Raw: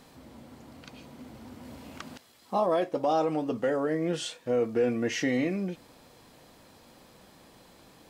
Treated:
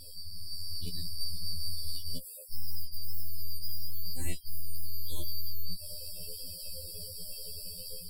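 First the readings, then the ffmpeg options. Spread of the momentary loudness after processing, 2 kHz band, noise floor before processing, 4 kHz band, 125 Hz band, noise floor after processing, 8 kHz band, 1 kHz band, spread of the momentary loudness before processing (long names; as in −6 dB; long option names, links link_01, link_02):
4 LU, −19.0 dB, −57 dBFS, +4.5 dB, −2.0 dB, −45 dBFS, +3.5 dB, −34.0 dB, 20 LU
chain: -af "afftfilt=real='real(if(lt(b,272),68*(eq(floor(b/68),0)*3+eq(floor(b/68),1)*2+eq(floor(b/68),2)*1+eq(floor(b/68),3)*0)+mod(b,68),b),0)':imag='imag(if(lt(b,272),68*(eq(floor(b/68),0)*3+eq(floor(b/68),1)*2+eq(floor(b/68),2)*1+eq(floor(b/68),3)*0)+mod(b,68),b),0)':win_size=2048:overlap=0.75,bandreject=frequency=6100:width=11,aeval=exprs='(tanh(89.1*val(0)+0.25)-tanh(0.25))/89.1':channel_layout=same,areverse,acompressor=threshold=-50dB:ratio=4,areverse,equalizer=frequency=1600:width=0.96:gain=-14,aexciter=amount=12.4:drive=4.1:freq=8700,alimiter=level_in=11.5dB:limit=-24dB:level=0:latency=1:release=136,volume=-11.5dB,afftfilt=real='re*gte(hypot(re,im),0.00126)':imag='im*gte(hypot(re,im),0.00126)':win_size=1024:overlap=0.75,aemphasis=mode=reproduction:type=riaa,dynaudnorm=framelen=350:gausssize=3:maxgain=7dB,afftfilt=real='re*2*eq(mod(b,4),0)':imag='im*2*eq(mod(b,4),0)':win_size=2048:overlap=0.75,volume=16.5dB"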